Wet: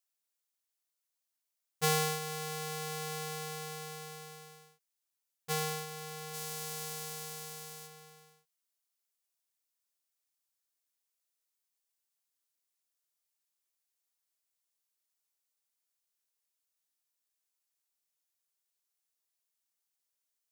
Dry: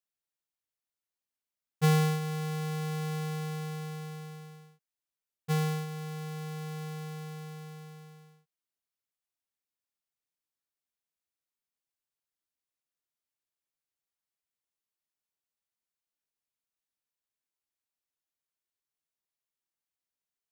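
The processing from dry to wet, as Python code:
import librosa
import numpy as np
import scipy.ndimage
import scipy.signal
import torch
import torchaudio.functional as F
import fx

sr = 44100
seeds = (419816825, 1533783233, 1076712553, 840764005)

y = fx.bass_treble(x, sr, bass_db=-15, treble_db=fx.steps((0.0, 7.0), (6.33, 15.0), (7.86, 8.0)))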